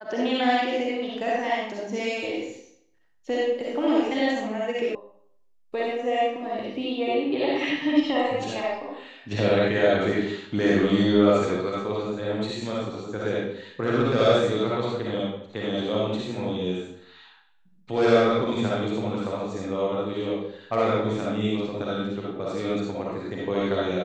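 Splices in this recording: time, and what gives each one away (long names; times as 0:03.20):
0:04.95: cut off before it has died away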